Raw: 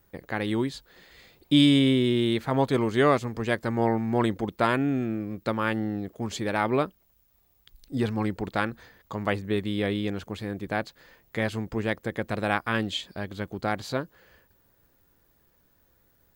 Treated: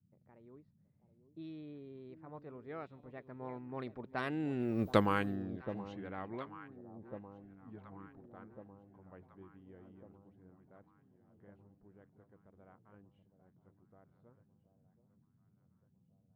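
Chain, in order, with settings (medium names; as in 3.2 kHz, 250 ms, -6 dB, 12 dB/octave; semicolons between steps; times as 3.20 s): Doppler pass-by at 4.87 s, 34 m/s, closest 3.2 m; on a send: echo whose repeats swap between lows and highs 725 ms, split 890 Hz, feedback 70%, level -12.5 dB; on the sum: band noise 86–220 Hz -75 dBFS; level-controlled noise filter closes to 880 Hz, open at -34.5 dBFS; trim +3.5 dB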